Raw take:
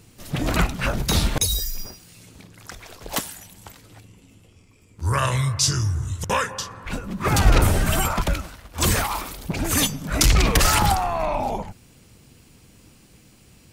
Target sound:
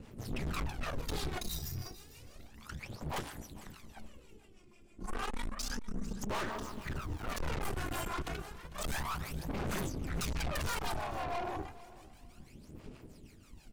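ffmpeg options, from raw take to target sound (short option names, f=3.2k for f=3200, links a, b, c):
-filter_complex "[0:a]highshelf=f=3.8k:g=-7.5,asplit=2[a][b];[b]acompressor=threshold=-32dB:ratio=6,volume=-1.5dB[c];[a][c]amix=inputs=2:normalize=0,asettb=1/sr,asplit=3[d][e][f];[d]atrim=end=6.294[g];[e]atrim=start=6.29:end=7.37,asetpts=PTS-STARTPTS,afade=t=in:d=0.004:c=qsin,afade=t=out:st=1.076:d=0.004:c=qsin,aeval=exprs='val(0)*gte(abs(val(0)),0.0168)':c=same[h];[f]atrim=start=7.366[i];[g][h]acrossfade=d=0.004:c1=hsin:c2=qsin[j];[j][i]acrossfade=d=0.004:c1=qsin:c2=hsin,flanger=delay=5.2:depth=3.2:regen=-65:speed=1.8:shape=sinusoidal,aeval=exprs='val(0)*sin(2*PI*110*n/s)':c=same,aphaser=in_gain=1:out_gain=1:delay=2.9:decay=0.66:speed=0.31:type=sinusoidal,acrossover=split=550[k][l];[k]aeval=exprs='val(0)*(1-0.7/2+0.7/2*cos(2*PI*6.2*n/s))':c=same[m];[l]aeval=exprs='val(0)*(1-0.7/2-0.7/2*cos(2*PI*6.2*n/s))':c=same[n];[m][n]amix=inputs=2:normalize=0,aeval=exprs='(tanh(50.1*val(0)+0.5)-tanh(0.5))/50.1':c=same,asplit=2[o][p];[p]aecho=0:1:449|898:0.126|0.0327[q];[o][q]amix=inputs=2:normalize=0"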